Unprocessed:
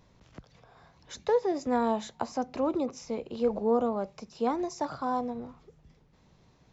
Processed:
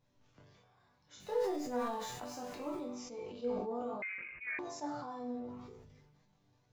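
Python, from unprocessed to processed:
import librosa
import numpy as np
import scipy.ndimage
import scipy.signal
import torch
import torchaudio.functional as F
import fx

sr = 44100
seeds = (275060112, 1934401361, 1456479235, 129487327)

y = fx.zero_step(x, sr, step_db=-38.5, at=(1.2, 2.77))
y = fx.resonator_bank(y, sr, root=43, chord='major', decay_s=0.55)
y = fx.chorus_voices(y, sr, voices=2, hz=0.44, base_ms=26, depth_ms=3.8, mix_pct=40)
y = fx.freq_invert(y, sr, carrier_hz=2700, at=(4.02, 4.59))
y = fx.sustainer(y, sr, db_per_s=35.0)
y = y * 10.0 ** (7.0 / 20.0)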